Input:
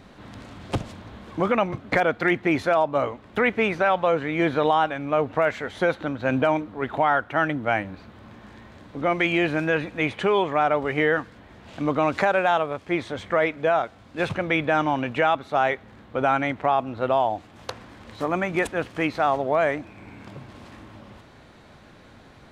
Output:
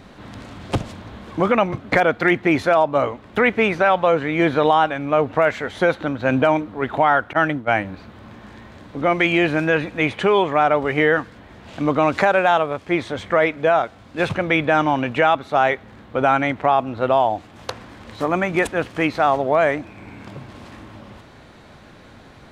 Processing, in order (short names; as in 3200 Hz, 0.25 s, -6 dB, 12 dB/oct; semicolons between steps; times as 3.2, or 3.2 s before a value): 7.33–7.76 expander -23 dBFS; gain +4.5 dB